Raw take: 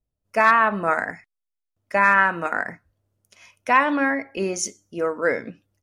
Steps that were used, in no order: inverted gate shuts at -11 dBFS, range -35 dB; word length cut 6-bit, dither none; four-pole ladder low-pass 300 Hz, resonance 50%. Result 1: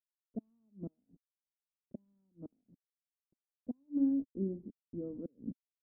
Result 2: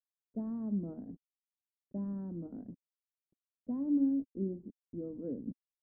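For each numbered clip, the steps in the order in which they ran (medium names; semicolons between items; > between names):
word length cut > inverted gate > four-pole ladder low-pass; word length cut > four-pole ladder low-pass > inverted gate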